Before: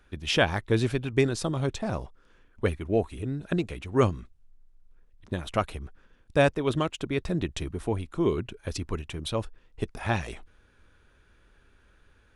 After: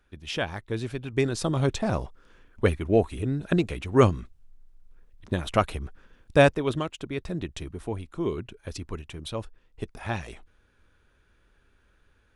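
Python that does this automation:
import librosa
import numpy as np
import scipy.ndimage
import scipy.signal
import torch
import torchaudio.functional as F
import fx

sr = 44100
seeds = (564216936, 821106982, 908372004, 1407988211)

y = fx.gain(x, sr, db=fx.line((0.86, -6.5), (1.59, 4.0), (6.42, 4.0), (6.87, -3.5)))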